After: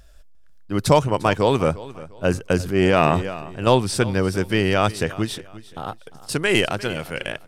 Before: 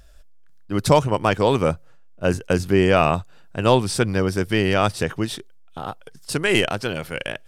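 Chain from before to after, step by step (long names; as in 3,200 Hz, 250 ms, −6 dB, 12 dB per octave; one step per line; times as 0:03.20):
repeating echo 350 ms, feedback 30%, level −18 dB
0:02.61–0:03.67: transient designer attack −8 dB, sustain +7 dB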